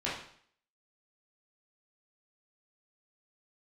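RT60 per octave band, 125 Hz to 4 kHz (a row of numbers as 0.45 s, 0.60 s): 0.60 s, 0.60 s, 0.55 s, 0.60 s, 0.60 s, 0.55 s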